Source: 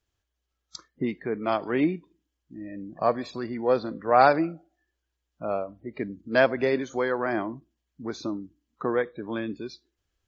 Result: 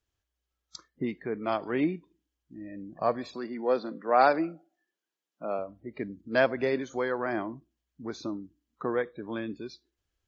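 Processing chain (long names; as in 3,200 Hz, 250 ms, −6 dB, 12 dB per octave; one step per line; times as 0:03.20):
0:03.34–0:05.59: high-pass filter 180 Hz 24 dB per octave
level −3.5 dB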